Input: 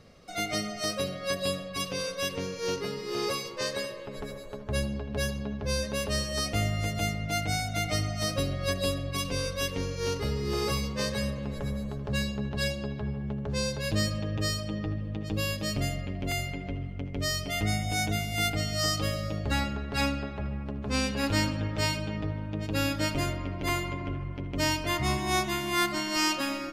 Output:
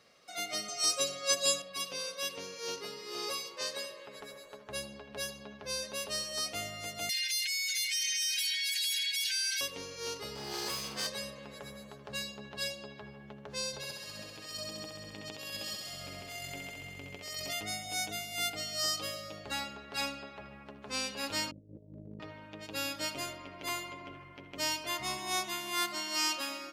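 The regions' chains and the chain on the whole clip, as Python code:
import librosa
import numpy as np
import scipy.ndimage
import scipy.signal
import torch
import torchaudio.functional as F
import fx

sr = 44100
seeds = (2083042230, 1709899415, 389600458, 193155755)

y = fx.chain(x, sr, fx.peak_eq(hz=7000.0, db=14.0, octaves=0.53),
    fx.comb(ms=7.2, depth=0.81), at=(0.68, 1.62))
y = fx.chain(y, sr, fx.brickwall_highpass(low_hz=1500.0),
    fx.comb(ms=4.5, depth=0.82),
    fx.env_flatten(amount_pct=100), at=(7.09, 9.61))
y = fx.chain(y, sr, fx.lower_of_two(delay_ms=0.62),
    fx.room_flutter(wall_m=8.8, rt60_s=0.3),
    fx.env_flatten(amount_pct=70), at=(10.35, 11.07))
y = fx.chain(y, sr, fx.low_shelf(hz=80.0, db=7.0),
    fx.over_compress(threshold_db=-32.0, ratio=-0.5),
    fx.echo_thinned(ms=66, feedback_pct=83, hz=170.0, wet_db=-4.5), at=(13.73, 17.53))
y = fx.chain(y, sr, fx.steep_lowpass(hz=510.0, slope=48),
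    fx.low_shelf(hz=110.0, db=9.0),
    fx.over_compress(threshold_db=-31.0, ratio=-0.5), at=(21.51, 22.2))
y = fx.highpass(y, sr, hz=1100.0, slope=6)
y = fx.dynamic_eq(y, sr, hz=1800.0, q=1.4, threshold_db=-49.0, ratio=4.0, max_db=-5)
y = F.gain(torch.from_numpy(y), -1.5).numpy()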